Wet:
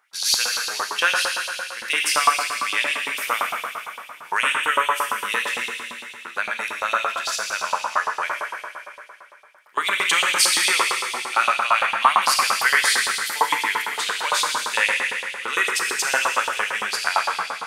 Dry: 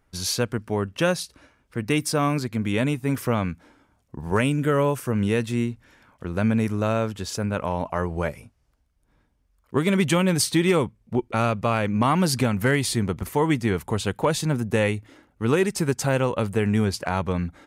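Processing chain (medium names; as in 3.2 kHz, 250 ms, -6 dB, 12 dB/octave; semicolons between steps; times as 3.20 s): Schroeder reverb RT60 2.7 s, combs from 26 ms, DRR -1 dB; LFO high-pass saw up 8.8 Hz 890–3800 Hz; trim +3.5 dB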